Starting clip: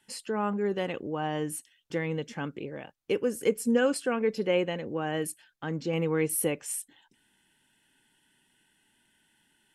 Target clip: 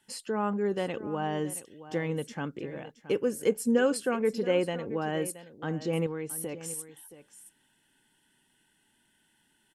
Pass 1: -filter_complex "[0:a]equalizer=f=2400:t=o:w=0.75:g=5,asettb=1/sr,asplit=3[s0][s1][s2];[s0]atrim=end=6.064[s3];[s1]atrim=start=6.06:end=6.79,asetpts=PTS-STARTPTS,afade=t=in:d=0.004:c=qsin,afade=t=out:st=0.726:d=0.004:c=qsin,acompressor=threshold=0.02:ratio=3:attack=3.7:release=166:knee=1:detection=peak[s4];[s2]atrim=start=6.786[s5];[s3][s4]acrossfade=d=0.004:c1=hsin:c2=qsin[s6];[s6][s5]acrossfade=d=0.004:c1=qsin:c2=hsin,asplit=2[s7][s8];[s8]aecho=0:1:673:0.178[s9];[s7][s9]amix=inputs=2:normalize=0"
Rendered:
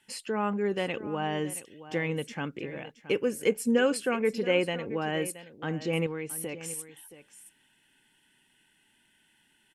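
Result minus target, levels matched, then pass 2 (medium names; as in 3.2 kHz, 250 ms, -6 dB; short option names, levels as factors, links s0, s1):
2 kHz band +4.0 dB
-filter_complex "[0:a]equalizer=f=2400:t=o:w=0.75:g=-3.5,asettb=1/sr,asplit=3[s0][s1][s2];[s0]atrim=end=6.064[s3];[s1]atrim=start=6.06:end=6.79,asetpts=PTS-STARTPTS,afade=t=in:d=0.004:c=qsin,afade=t=out:st=0.726:d=0.004:c=qsin,acompressor=threshold=0.02:ratio=3:attack=3.7:release=166:knee=1:detection=peak[s4];[s2]atrim=start=6.786[s5];[s3][s4]acrossfade=d=0.004:c1=hsin:c2=qsin[s6];[s6][s5]acrossfade=d=0.004:c1=qsin:c2=hsin,asplit=2[s7][s8];[s8]aecho=0:1:673:0.178[s9];[s7][s9]amix=inputs=2:normalize=0"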